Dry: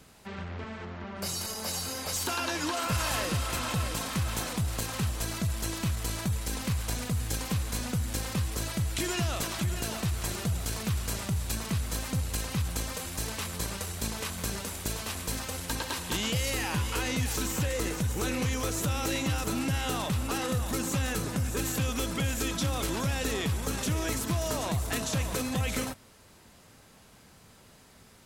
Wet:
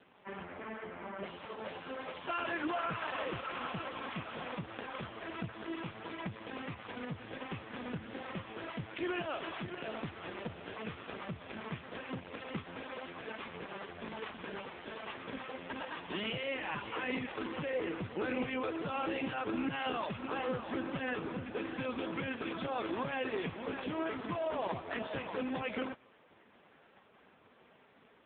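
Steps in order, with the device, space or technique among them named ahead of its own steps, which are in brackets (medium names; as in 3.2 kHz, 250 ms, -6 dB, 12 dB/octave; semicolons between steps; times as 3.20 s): telephone (band-pass 260–3100 Hz; saturation -24.5 dBFS, distortion -22 dB; trim +1.5 dB; AMR-NB 4.75 kbps 8 kHz)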